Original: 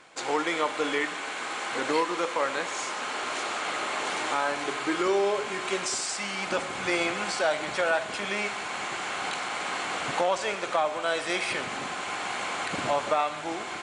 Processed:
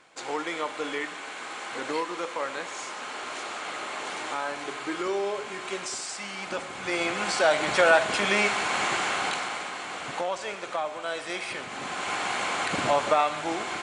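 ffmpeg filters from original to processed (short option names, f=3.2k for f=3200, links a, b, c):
-af "volume=14dB,afade=t=in:st=6.82:d=1.03:silence=0.298538,afade=t=out:st=8.91:d=0.81:silence=0.281838,afade=t=in:st=11.69:d=0.42:silence=0.421697"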